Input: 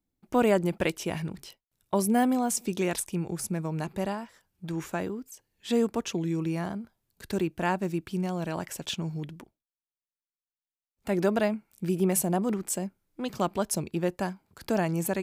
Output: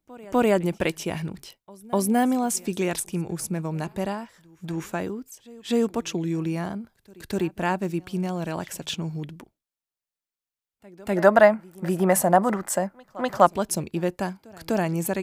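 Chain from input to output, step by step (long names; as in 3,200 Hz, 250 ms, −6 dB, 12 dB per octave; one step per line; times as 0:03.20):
echo ahead of the sound 249 ms −23 dB
gain on a spectral selection 0:11.16–0:13.46, 510–2,100 Hz +11 dB
level +2.5 dB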